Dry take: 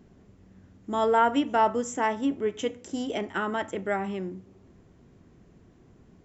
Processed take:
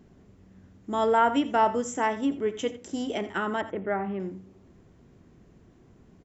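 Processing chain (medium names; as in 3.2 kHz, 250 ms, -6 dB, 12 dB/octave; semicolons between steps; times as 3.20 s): 3.61–4.20 s: low-pass 1.8 kHz 12 dB/octave; on a send: delay 85 ms -15.5 dB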